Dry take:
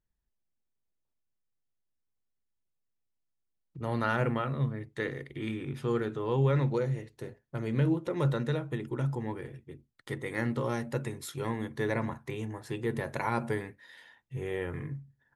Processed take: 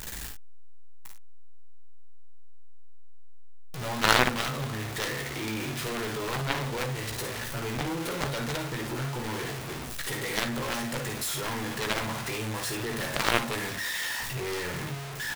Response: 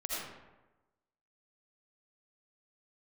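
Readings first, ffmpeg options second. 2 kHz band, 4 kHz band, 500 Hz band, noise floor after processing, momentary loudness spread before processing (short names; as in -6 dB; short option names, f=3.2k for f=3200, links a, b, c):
+9.0 dB, +17.0 dB, -0.5 dB, -37 dBFS, 13 LU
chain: -filter_complex "[0:a]aeval=exprs='val(0)+0.5*0.0282*sgn(val(0))':c=same,tiltshelf=f=750:g=-5.5,asplit=2[a][b];[b]aecho=0:1:16|55|73:0.447|0.473|0.316[c];[a][c]amix=inputs=2:normalize=0,aeval=exprs='0.398*(cos(1*acos(clip(val(0)/0.398,-1,1)))-cos(1*PI/2))+0.01*(cos(5*acos(clip(val(0)/0.398,-1,1)))-cos(5*PI/2))+0.1*(cos(7*acos(clip(val(0)/0.398,-1,1)))-cos(7*PI/2))':c=same,volume=5dB"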